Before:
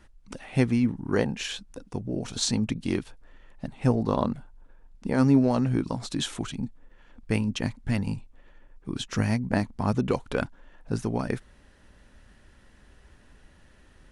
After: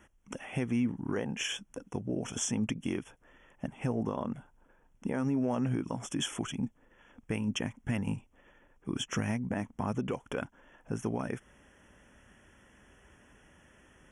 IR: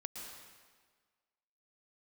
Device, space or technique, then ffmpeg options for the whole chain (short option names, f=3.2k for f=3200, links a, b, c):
PA system with an anti-feedback notch: -af "highpass=f=140:p=1,asuperstop=centerf=4300:order=20:qfactor=2.3,alimiter=limit=-22dB:level=0:latency=1:release=175"